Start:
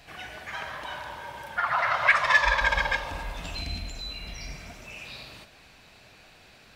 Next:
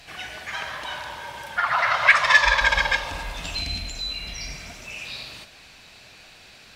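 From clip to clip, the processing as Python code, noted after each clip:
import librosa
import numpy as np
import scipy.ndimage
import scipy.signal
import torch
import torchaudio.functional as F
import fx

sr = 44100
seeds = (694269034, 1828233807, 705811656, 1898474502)

y = fx.peak_eq(x, sr, hz=5500.0, db=7.0, octaves=2.9)
y = F.gain(torch.from_numpy(y), 1.5).numpy()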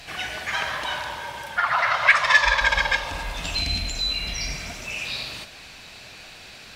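y = fx.rider(x, sr, range_db=5, speed_s=2.0)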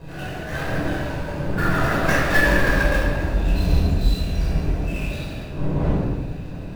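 y = scipy.ndimage.median_filter(x, 41, mode='constant')
y = fx.dmg_wind(y, sr, seeds[0], corner_hz=310.0, level_db=-40.0)
y = fx.room_shoebox(y, sr, seeds[1], volume_m3=990.0, walls='mixed', distance_m=5.2)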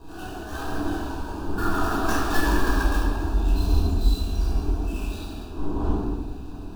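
y = fx.fixed_phaser(x, sr, hz=550.0, stages=6)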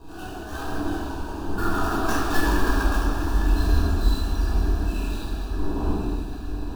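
y = fx.echo_diffused(x, sr, ms=984, feedback_pct=54, wet_db=-9.5)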